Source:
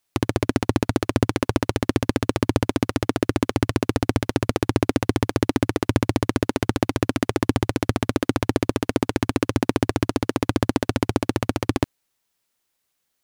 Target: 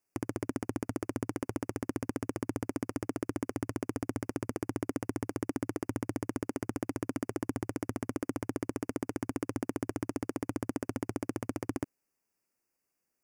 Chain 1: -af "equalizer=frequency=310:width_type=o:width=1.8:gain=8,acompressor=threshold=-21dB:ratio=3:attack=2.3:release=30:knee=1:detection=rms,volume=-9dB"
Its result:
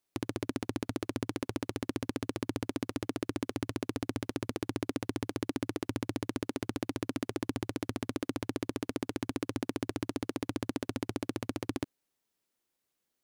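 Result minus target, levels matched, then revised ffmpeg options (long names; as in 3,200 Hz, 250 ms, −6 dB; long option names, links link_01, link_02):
4,000 Hz band +9.5 dB
-af "asuperstop=centerf=3600:order=12:qfactor=2.1,equalizer=frequency=310:width_type=o:width=1.8:gain=8,acompressor=threshold=-21dB:ratio=3:attack=2.3:release=30:knee=1:detection=rms,volume=-9dB"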